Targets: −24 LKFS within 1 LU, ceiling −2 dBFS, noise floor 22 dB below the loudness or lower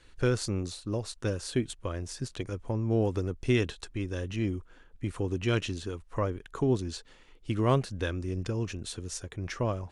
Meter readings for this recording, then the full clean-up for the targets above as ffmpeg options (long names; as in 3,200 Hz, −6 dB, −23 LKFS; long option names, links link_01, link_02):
integrated loudness −32.0 LKFS; sample peak −13.5 dBFS; target loudness −24.0 LKFS
→ -af "volume=8dB"